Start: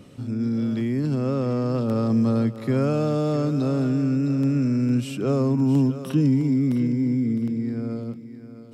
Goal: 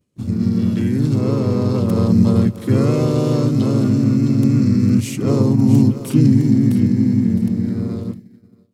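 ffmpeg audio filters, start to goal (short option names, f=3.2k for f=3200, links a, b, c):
-filter_complex "[0:a]aemphasis=mode=production:type=75kf,asplit=2[a][b];[b]aeval=exprs='sgn(val(0))*max(abs(val(0))-0.0168,0)':c=same,volume=-5.5dB[c];[a][c]amix=inputs=2:normalize=0,lowshelf=f=490:g=8.5,agate=range=-33dB:threshold=-24dB:ratio=3:detection=peak,asplit=4[d][e][f][g];[e]asetrate=35002,aresample=44100,atempo=1.25992,volume=-4dB[h];[f]asetrate=37084,aresample=44100,atempo=1.18921,volume=-3dB[i];[g]asetrate=55563,aresample=44100,atempo=0.793701,volume=-17dB[j];[d][h][i][j]amix=inputs=4:normalize=0,volume=-6dB"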